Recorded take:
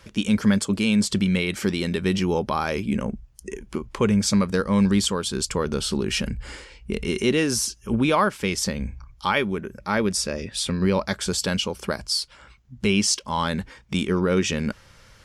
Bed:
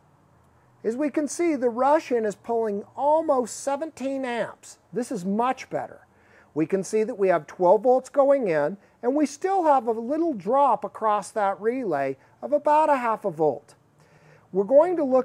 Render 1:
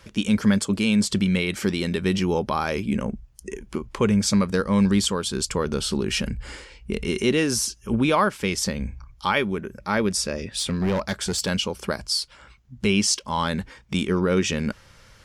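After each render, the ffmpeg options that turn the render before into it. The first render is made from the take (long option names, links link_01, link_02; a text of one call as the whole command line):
ffmpeg -i in.wav -filter_complex "[0:a]asettb=1/sr,asplit=3[link_01][link_02][link_03];[link_01]atrim=end=10.594[link_04];[link_02]atrim=start=10.59:end=11.49,asetpts=PTS-STARTPTS,afade=type=in:duration=0.004:curve=qsin,afade=type=out:start_time=0.896:duration=0.004:curve=qsin,volume=19dB,asoftclip=hard,volume=-19dB[link_05];[link_03]atrim=start=11.486[link_06];[link_04][link_05]acrossfade=duration=0.004:curve1=hsin:curve2=qsin[link_07];[link_07][link_06]acrossfade=duration=0.004:curve1=qsin:curve2=hsin" out.wav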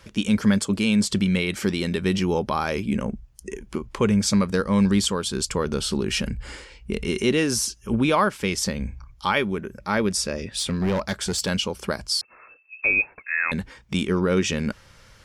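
ffmpeg -i in.wav -filter_complex "[0:a]asettb=1/sr,asplit=3[link_01][link_02][link_03];[link_01]atrim=end=12.214[link_04];[link_02]atrim=start=12.21:end=13.52,asetpts=PTS-STARTPTS,afade=type=in:duration=0.004:curve=qsin,afade=type=out:start_time=1.306:duration=0.004:curve=qsin,lowpass=frequency=2300:width_type=q:width=0.5098,lowpass=frequency=2300:width_type=q:width=0.6013,lowpass=frequency=2300:width_type=q:width=0.9,lowpass=frequency=2300:width_type=q:width=2.563,afreqshift=-2700[link_05];[link_03]atrim=start=13.516[link_06];[link_04][link_05]acrossfade=duration=0.004:curve1=hsin:curve2=qsin[link_07];[link_07][link_06]acrossfade=duration=0.004:curve1=qsin:curve2=hsin" out.wav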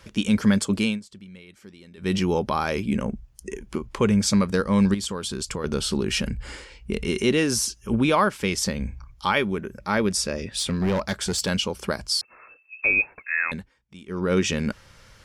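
ffmpeg -i in.wav -filter_complex "[0:a]asettb=1/sr,asplit=3[link_01][link_02][link_03];[link_01]atrim=end=4.944[link_04];[link_02]atrim=start=4.94:end=5.64,asetpts=PTS-STARTPTS,afade=type=in:duration=0.004:curve=qsin,afade=type=out:start_time=0.696:duration=0.004:curve=qsin,acompressor=threshold=-25dB:ratio=10:attack=3.2:release=140:knee=1:detection=peak[link_05];[link_03]atrim=start=5.636[link_06];[link_04][link_05]acrossfade=duration=0.004:curve1=hsin:curve2=qsin[link_07];[link_07][link_06]acrossfade=duration=0.004:curve1=qsin:curve2=hsin,asplit=5[link_08][link_09][link_10][link_11][link_12];[link_08]atrim=end=1,asetpts=PTS-STARTPTS,afade=type=out:start_time=0.84:duration=0.16:silence=0.0749894[link_13];[link_09]atrim=start=1:end=1.97,asetpts=PTS-STARTPTS,volume=-22.5dB[link_14];[link_10]atrim=start=1.97:end=13.69,asetpts=PTS-STARTPTS,afade=type=in:duration=0.16:silence=0.0749894,afade=type=out:start_time=11.43:duration=0.29:silence=0.0944061[link_15];[link_11]atrim=start=13.69:end=14.05,asetpts=PTS-STARTPTS,volume=-20.5dB[link_16];[link_12]atrim=start=14.05,asetpts=PTS-STARTPTS,afade=type=in:duration=0.29:silence=0.0944061[link_17];[link_13][link_14][link_15][link_16][link_17]concat=n=5:v=0:a=1" out.wav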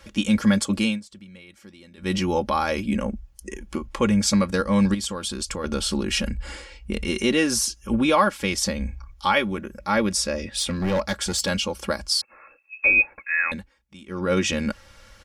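ffmpeg -i in.wav -af "equalizer=frequency=270:width=4.2:gain=-4.5,aecho=1:1:3.6:0.64" out.wav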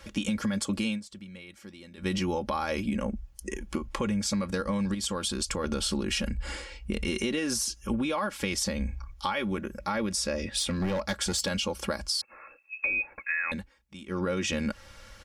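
ffmpeg -i in.wav -af "alimiter=limit=-15dB:level=0:latency=1,acompressor=threshold=-26dB:ratio=6" out.wav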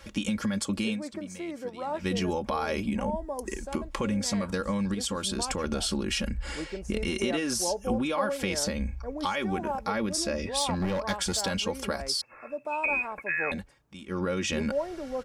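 ffmpeg -i in.wav -i bed.wav -filter_complex "[1:a]volume=-13.5dB[link_01];[0:a][link_01]amix=inputs=2:normalize=0" out.wav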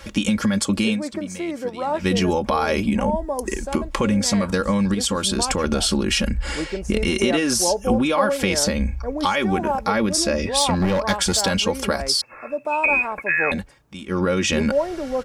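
ffmpeg -i in.wav -af "volume=9dB" out.wav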